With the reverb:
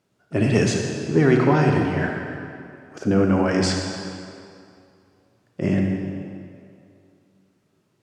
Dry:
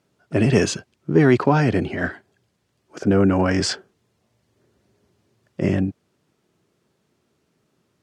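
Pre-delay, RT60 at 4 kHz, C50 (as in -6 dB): 31 ms, 1.9 s, 2.0 dB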